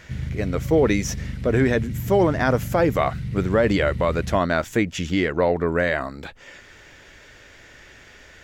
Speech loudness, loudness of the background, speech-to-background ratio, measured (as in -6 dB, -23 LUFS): -22.0 LUFS, -31.0 LUFS, 9.0 dB